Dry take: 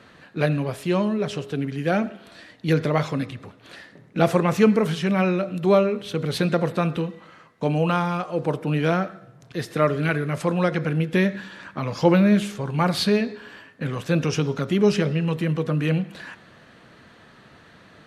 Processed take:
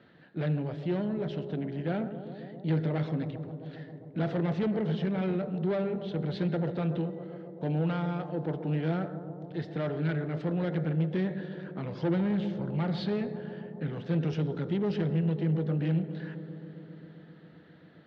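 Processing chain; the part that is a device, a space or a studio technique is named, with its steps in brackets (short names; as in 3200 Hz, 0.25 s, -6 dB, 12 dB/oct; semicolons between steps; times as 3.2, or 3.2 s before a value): analogue delay pedal into a guitar amplifier (analogue delay 0.133 s, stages 1024, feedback 83%, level -14 dB; tube stage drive 19 dB, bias 0.4; speaker cabinet 76–3800 Hz, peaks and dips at 160 Hz +7 dB, 1100 Hz -9 dB, 2500 Hz -7 dB); 1.82–2.75 notch 5400 Hz, Q 5.1; bell 330 Hz +4.5 dB 0.48 oct; gain -7.5 dB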